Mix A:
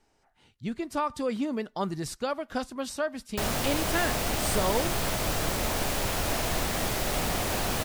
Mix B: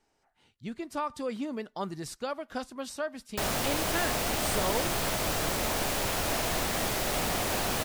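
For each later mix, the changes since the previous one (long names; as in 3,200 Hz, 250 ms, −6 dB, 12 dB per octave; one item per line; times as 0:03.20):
speech −3.5 dB
master: add low-shelf EQ 150 Hz −5.5 dB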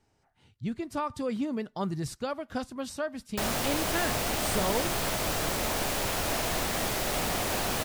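speech: add parametric band 100 Hz +14.5 dB 1.7 octaves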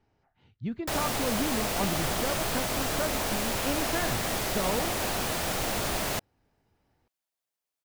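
speech: add high-frequency loss of the air 180 metres
background: entry −2.50 s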